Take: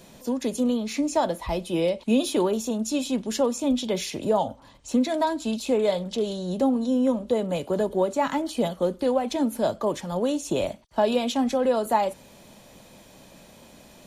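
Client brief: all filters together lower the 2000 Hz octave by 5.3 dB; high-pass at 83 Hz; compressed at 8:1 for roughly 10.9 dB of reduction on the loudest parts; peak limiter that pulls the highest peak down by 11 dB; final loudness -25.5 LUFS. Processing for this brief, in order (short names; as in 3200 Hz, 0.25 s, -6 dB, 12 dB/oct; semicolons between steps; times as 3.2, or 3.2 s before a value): HPF 83 Hz; bell 2000 Hz -7 dB; compressor 8:1, threshold -29 dBFS; gain +11 dB; limiter -17 dBFS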